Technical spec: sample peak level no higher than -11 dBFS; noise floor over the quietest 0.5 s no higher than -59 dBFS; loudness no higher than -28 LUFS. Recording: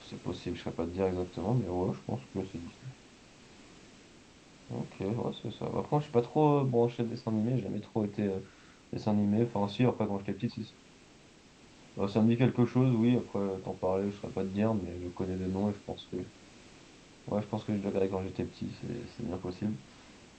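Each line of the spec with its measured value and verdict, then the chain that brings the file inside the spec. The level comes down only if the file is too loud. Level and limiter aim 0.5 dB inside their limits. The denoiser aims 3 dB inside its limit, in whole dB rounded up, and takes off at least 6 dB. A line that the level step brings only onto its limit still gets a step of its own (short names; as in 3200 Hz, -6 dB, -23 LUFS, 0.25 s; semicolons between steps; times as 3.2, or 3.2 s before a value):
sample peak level -12.5 dBFS: OK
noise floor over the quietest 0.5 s -57 dBFS: fail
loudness -32.5 LUFS: OK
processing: denoiser 6 dB, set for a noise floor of -57 dBFS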